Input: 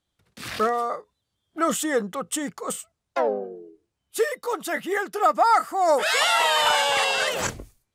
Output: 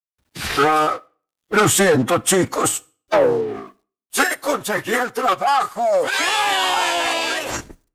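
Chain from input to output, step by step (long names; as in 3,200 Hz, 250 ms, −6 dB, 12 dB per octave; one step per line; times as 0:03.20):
source passing by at 0:02.16, 12 m/s, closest 13 metres
low-shelf EQ 110 Hz +2.5 dB
leveller curve on the samples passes 3
in parallel at −2 dB: downward compressor, threshold −37 dBFS, peak gain reduction 20 dB
on the sum: phase-vocoder pitch shift with formants kept −8 semitones
bit-depth reduction 12 bits, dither none
on a send at −20 dB: convolution reverb RT60 0.40 s, pre-delay 9 ms
on the sum: level +3 dB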